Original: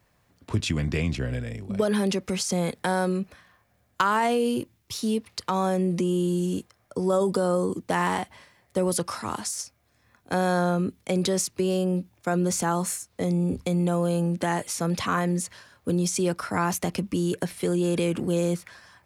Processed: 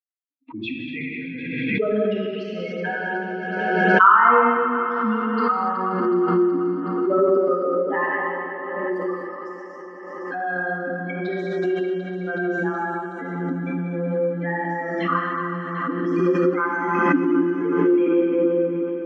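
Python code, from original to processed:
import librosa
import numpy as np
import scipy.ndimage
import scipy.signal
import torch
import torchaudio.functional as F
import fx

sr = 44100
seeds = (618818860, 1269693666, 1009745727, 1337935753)

p1 = fx.bin_expand(x, sr, power=3.0)
p2 = fx.peak_eq(p1, sr, hz=660.0, db=-7.0, octaves=0.24)
p3 = fx.notch(p2, sr, hz=550.0, q=18.0)
p4 = fx.rider(p3, sr, range_db=10, speed_s=0.5)
p5 = p3 + F.gain(torch.from_numpy(p4), 0.0).numpy()
p6 = fx.cabinet(p5, sr, low_hz=250.0, low_slope=24, high_hz=2300.0, hz=(280.0, 810.0, 1300.0), db=(7, -6, 9))
p7 = p6 + fx.echo_alternate(p6, sr, ms=186, hz=940.0, feedback_pct=81, wet_db=-7, dry=0)
p8 = fx.rev_gated(p7, sr, seeds[0], gate_ms=320, shape='flat', drr_db=-4.0)
y = fx.pre_swell(p8, sr, db_per_s=29.0)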